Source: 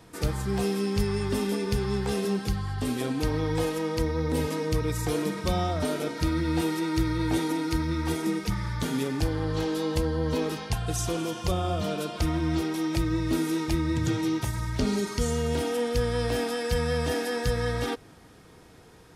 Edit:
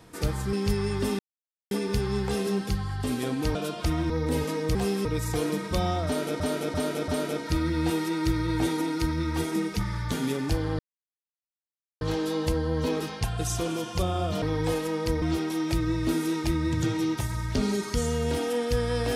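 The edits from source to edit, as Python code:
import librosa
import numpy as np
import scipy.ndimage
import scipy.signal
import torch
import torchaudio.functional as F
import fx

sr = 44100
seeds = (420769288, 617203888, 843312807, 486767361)

y = fx.edit(x, sr, fx.move(start_s=0.53, length_s=0.3, to_s=4.78),
    fx.insert_silence(at_s=1.49, length_s=0.52),
    fx.swap(start_s=3.33, length_s=0.8, other_s=11.91, other_length_s=0.55),
    fx.repeat(start_s=5.79, length_s=0.34, count=4),
    fx.insert_silence(at_s=9.5, length_s=1.22), tone=tone)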